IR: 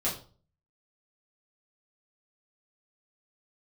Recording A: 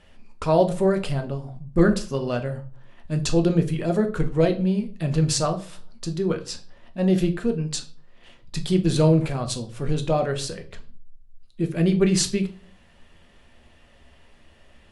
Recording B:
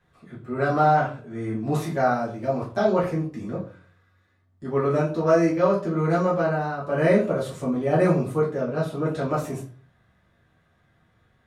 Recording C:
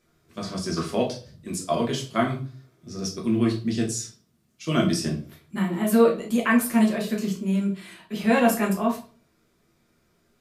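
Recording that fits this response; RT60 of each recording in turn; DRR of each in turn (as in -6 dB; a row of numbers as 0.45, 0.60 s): B; 0.40, 0.40, 0.40 s; 5.5, -8.0, -2.0 dB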